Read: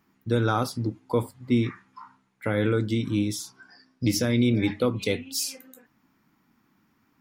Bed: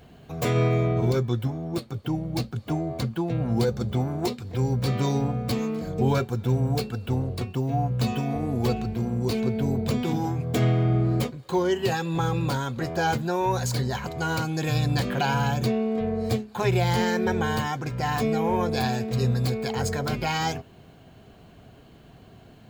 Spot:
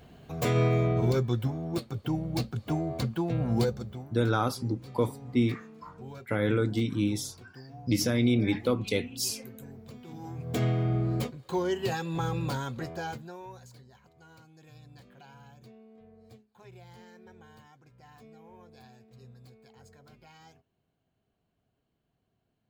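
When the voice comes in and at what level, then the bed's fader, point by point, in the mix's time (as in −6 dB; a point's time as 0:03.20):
3.85 s, −2.5 dB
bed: 0:03.63 −2.5 dB
0:04.14 −21.5 dB
0:10.02 −21.5 dB
0:10.54 −5.5 dB
0:12.74 −5.5 dB
0:13.85 −28.5 dB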